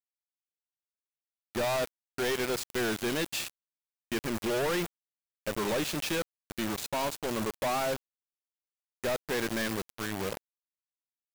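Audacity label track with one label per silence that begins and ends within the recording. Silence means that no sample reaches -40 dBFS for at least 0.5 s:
3.500000	4.120000	silence
4.860000	5.470000	silence
7.960000	9.040000	silence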